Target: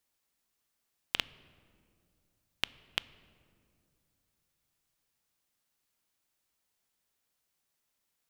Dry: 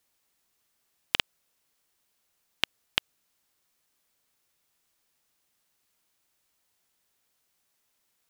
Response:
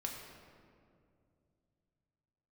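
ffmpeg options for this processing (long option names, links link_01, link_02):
-filter_complex "[0:a]asplit=2[link_01][link_02];[1:a]atrim=start_sample=2205,lowshelf=frequency=290:gain=11.5[link_03];[link_02][link_03]afir=irnorm=-1:irlink=0,volume=-15dB[link_04];[link_01][link_04]amix=inputs=2:normalize=0,volume=-7.5dB"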